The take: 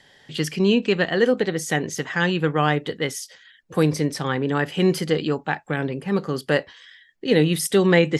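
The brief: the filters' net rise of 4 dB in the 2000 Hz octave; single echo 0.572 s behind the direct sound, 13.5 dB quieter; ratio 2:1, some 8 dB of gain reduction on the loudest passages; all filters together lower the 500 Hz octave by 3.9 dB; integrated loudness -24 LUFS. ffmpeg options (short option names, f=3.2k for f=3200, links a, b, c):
-af "equalizer=f=500:t=o:g=-5,equalizer=f=2k:t=o:g=5,acompressor=threshold=-27dB:ratio=2,aecho=1:1:572:0.211,volume=4dB"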